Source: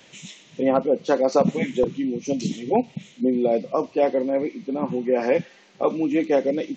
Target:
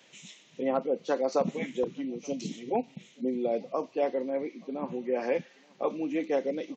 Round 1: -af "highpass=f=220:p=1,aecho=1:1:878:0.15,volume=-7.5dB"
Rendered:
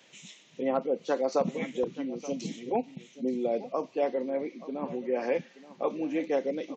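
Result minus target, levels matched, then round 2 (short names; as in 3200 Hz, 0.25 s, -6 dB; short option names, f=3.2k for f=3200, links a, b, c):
echo-to-direct +11 dB
-af "highpass=f=220:p=1,aecho=1:1:878:0.0422,volume=-7.5dB"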